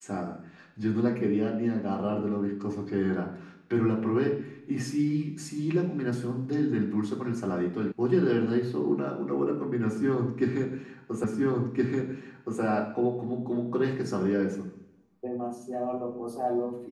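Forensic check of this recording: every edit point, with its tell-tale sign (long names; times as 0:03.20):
0:07.92: cut off before it has died away
0:11.24: the same again, the last 1.37 s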